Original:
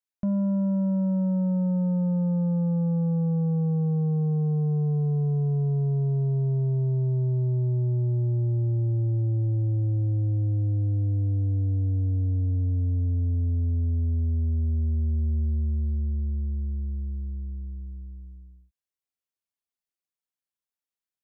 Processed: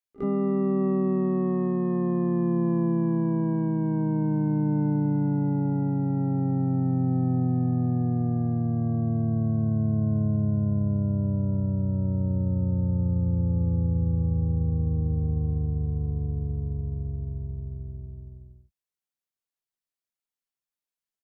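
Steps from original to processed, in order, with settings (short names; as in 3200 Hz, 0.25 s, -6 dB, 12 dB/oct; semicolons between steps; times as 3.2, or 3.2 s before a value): pre-echo 47 ms -20 dB; harmoniser -4 st -13 dB, +5 st -5 dB, +12 st -2 dB; gain -3.5 dB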